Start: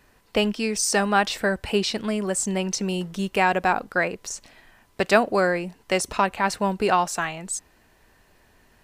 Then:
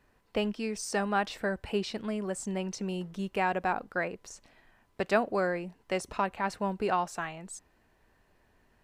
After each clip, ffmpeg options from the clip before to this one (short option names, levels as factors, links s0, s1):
-af "highshelf=f=2900:g=-8,volume=0.422"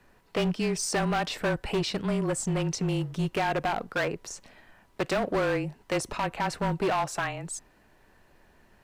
-af "alimiter=limit=0.0944:level=0:latency=1:release=100,afreqshift=-26,volume=29.9,asoftclip=hard,volume=0.0335,volume=2.24"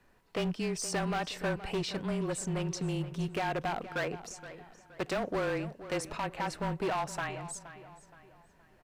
-filter_complex "[0:a]asplit=2[s0][s1];[s1]adelay=471,lowpass=f=4000:p=1,volume=0.211,asplit=2[s2][s3];[s3]adelay=471,lowpass=f=4000:p=1,volume=0.4,asplit=2[s4][s5];[s5]adelay=471,lowpass=f=4000:p=1,volume=0.4,asplit=2[s6][s7];[s7]adelay=471,lowpass=f=4000:p=1,volume=0.4[s8];[s0][s2][s4][s6][s8]amix=inputs=5:normalize=0,volume=0.531"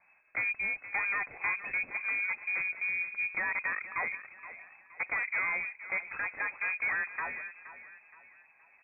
-af "lowpass=f=2200:t=q:w=0.5098,lowpass=f=2200:t=q:w=0.6013,lowpass=f=2200:t=q:w=0.9,lowpass=f=2200:t=q:w=2.563,afreqshift=-2600"